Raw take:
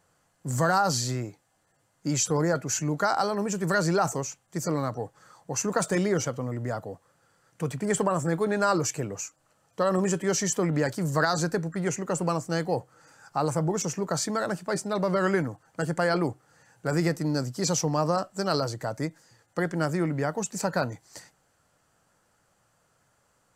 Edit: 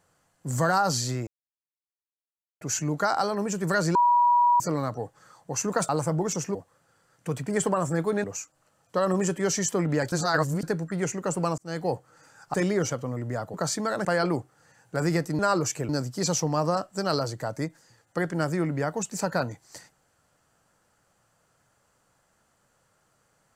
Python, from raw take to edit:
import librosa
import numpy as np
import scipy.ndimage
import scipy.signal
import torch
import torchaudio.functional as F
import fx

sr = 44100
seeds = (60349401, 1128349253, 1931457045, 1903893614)

y = fx.edit(x, sr, fx.silence(start_s=1.27, length_s=1.34),
    fx.bleep(start_s=3.95, length_s=0.65, hz=966.0, db=-16.5),
    fx.swap(start_s=5.89, length_s=1.0, other_s=13.38, other_length_s=0.66),
    fx.move(start_s=8.58, length_s=0.5, to_s=17.3),
    fx.reverse_span(start_s=10.96, length_s=0.51),
    fx.fade_in_span(start_s=12.42, length_s=0.27),
    fx.cut(start_s=14.55, length_s=1.41), tone=tone)